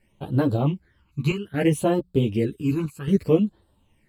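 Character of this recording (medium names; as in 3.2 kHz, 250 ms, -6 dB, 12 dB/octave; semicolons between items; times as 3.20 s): phasing stages 12, 0.62 Hz, lowest notch 560–2200 Hz; chopped level 0.65 Hz, depth 65%, duty 85%; a shimmering, thickened sound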